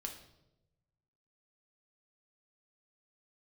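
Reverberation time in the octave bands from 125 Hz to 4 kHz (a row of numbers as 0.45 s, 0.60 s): 1.7 s, 1.2 s, 1.1 s, 0.75 s, 0.65 s, 0.70 s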